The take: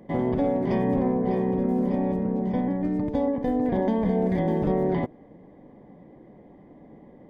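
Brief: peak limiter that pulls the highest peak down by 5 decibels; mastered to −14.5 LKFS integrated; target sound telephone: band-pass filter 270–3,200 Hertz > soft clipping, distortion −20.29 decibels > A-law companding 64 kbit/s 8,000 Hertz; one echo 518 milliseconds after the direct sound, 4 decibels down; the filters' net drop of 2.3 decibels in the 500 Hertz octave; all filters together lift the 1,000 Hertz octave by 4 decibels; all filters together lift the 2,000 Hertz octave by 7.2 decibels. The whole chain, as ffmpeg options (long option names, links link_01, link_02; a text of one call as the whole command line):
ffmpeg -i in.wav -af "equalizer=frequency=500:width_type=o:gain=-4,equalizer=frequency=1000:width_type=o:gain=6.5,equalizer=frequency=2000:width_type=o:gain=7,alimiter=limit=-17.5dB:level=0:latency=1,highpass=270,lowpass=3200,aecho=1:1:518:0.631,asoftclip=threshold=-19.5dB,volume=15dB" -ar 8000 -c:a pcm_alaw out.wav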